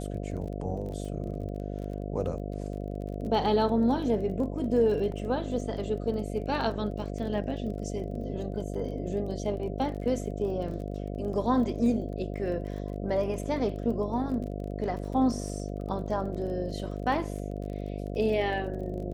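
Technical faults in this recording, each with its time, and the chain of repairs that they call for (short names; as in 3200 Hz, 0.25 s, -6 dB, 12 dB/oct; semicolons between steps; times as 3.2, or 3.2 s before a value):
buzz 50 Hz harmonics 14 -35 dBFS
crackle 26/s -38 dBFS
5.12 gap 2 ms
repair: de-click; de-hum 50 Hz, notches 14; interpolate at 5.12, 2 ms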